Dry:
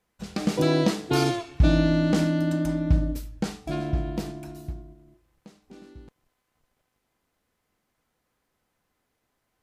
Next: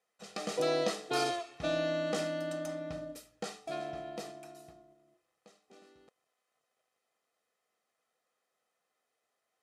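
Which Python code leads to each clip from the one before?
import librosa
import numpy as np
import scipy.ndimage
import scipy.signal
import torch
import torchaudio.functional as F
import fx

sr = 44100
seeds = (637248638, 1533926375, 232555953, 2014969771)

y = scipy.signal.sosfilt(scipy.signal.cheby1(2, 1.0, [400.0, 9900.0], 'bandpass', fs=sr, output='sos'), x)
y = fx.notch(y, sr, hz=570.0, q=15.0)
y = y + 0.54 * np.pad(y, (int(1.6 * sr / 1000.0), 0))[:len(y)]
y = y * 10.0 ** (-5.5 / 20.0)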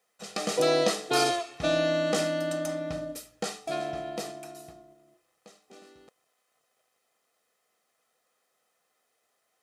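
y = fx.high_shelf(x, sr, hz=6200.0, db=5.5)
y = y * 10.0 ** (6.5 / 20.0)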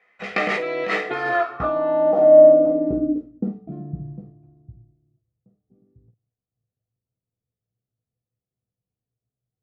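y = fx.over_compress(x, sr, threshold_db=-30.0, ratio=-1.0)
y = fx.room_early_taps(y, sr, ms=(16, 51), db=(-4.5, -10.0))
y = fx.filter_sweep_lowpass(y, sr, from_hz=2100.0, to_hz=110.0, start_s=1.02, end_s=4.36, q=5.2)
y = y * 10.0 ** (4.5 / 20.0)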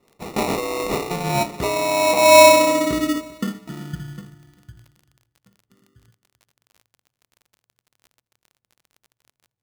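y = fx.sample_hold(x, sr, seeds[0], rate_hz=1600.0, jitter_pct=0)
y = fx.dmg_crackle(y, sr, seeds[1], per_s=33.0, level_db=-38.0)
y = fx.echo_feedback(y, sr, ms=393, feedback_pct=31, wet_db=-22.0)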